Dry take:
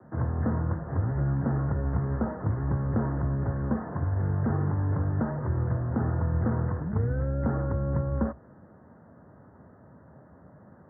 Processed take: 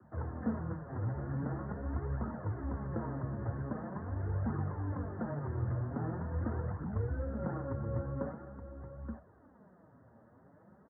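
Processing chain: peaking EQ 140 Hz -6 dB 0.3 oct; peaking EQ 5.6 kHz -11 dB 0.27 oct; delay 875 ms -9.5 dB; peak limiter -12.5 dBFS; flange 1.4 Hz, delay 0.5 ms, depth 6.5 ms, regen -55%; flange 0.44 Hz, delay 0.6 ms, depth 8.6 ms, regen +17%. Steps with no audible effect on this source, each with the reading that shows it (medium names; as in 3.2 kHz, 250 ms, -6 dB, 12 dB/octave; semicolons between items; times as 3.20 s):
peaking EQ 5.6 kHz: input has nothing above 960 Hz; peak limiter -12.5 dBFS: peak at its input -14.0 dBFS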